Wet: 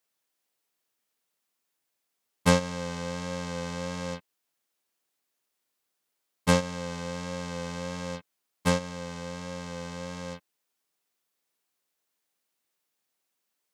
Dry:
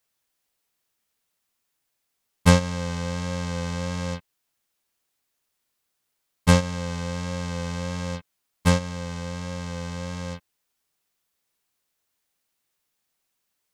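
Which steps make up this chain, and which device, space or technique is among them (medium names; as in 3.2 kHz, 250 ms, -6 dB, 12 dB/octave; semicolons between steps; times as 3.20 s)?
filter by subtraction (in parallel: low-pass 330 Hz 12 dB/octave + polarity flip); on the sum: trim -3.5 dB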